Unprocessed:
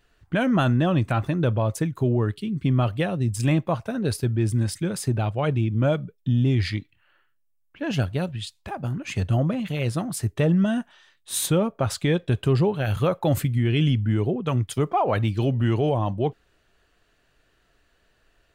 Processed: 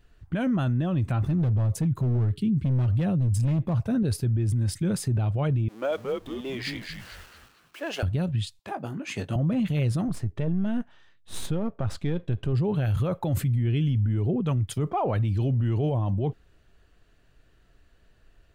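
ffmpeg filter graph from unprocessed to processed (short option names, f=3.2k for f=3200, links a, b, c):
-filter_complex "[0:a]asettb=1/sr,asplit=3[a][b][c];[a]atrim=end=1.214[d];[b]atrim=start=1.21:end=4.03,asetpts=PTS-STARTPTS,afade=t=in:d=0.004:c=qsin,afade=t=out:st=2.816:d=0.004:c=qsin,equalizer=f=130:w=0.53:g=7,volume=15dB,asoftclip=hard,volume=-15dB[e];[c]atrim=start=4.026[f];[d][e]acrossfade=d=0.004:c1=hsin:c2=qsin[g];[g][f]acrossfade=d=0.004:c1=qsin:c2=hsin,asettb=1/sr,asplit=3[h][i][j];[h]atrim=end=5.684[k];[i]atrim=start=5.68:end=8.03,asetpts=PTS-STARTPTS,afade=t=in:d=0.004:c=qsin,afade=t=out:st=2.346:d=0.004:c=qsin,aeval=exprs='val(0)+0.5*0.0112*sgn(val(0))':c=same,highpass=f=430:w=0.5412,highpass=f=430:w=1.3066,asplit=5[l][m][n][o][p];[m]adelay=224,afreqshift=-120,volume=-6dB[q];[n]adelay=448,afreqshift=-240,volume=-14.6dB[r];[o]adelay=672,afreqshift=-360,volume=-23.3dB[s];[p]adelay=896,afreqshift=-480,volume=-31.9dB[t];[l][q][r][s][t]amix=inputs=5:normalize=0,atrim=end_sample=103635[u];[j]atrim=start=8.026[v];[k][u]acrossfade=d=0.004:c1=hsin:c2=qsin[w];[w][v]acrossfade=d=0.004:c1=qsin:c2=hsin,asettb=1/sr,asplit=3[x][y][z];[x]atrim=end=8.594[aa];[y]atrim=start=8.59:end=9.36,asetpts=PTS-STARTPTS,afade=t=in:d=0.004:c=qsin,afade=t=out:st=0.766:d=0.004:c=qsin,highpass=300,asplit=2[ab][ac];[ac]adelay=19,volume=-8dB[ad];[ab][ad]amix=inputs=2:normalize=0,atrim=end_sample=33957[ae];[z]atrim=start=9.356[af];[aa][ae]acrossfade=d=0.004:c1=hsin:c2=qsin[ag];[ag][af]acrossfade=d=0.004:c1=qsin:c2=hsin,asettb=1/sr,asplit=3[ah][ai][aj];[ah]atrim=end=10.084[ak];[ai]atrim=start=10.08:end=12.53,asetpts=PTS-STARTPTS,afade=t=in:d=0.004:c=qsin,afade=t=out:st=2.446:d=0.004:c=qsin,aeval=exprs='if(lt(val(0),0),0.447*val(0),val(0))':c=same,lowpass=f=2.9k:p=1[al];[aj]atrim=start=12.526[am];[ak][al]acrossfade=d=0.004:c1=hsin:c2=qsin[an];[an][am]acrossfade=d=0.004:c1=qsin:c2=hsin,lowshelf=f=260:g=11.5,alimiter=limit=-16.5dB:level=0:latency=1:release=29,volume=-2.5dB"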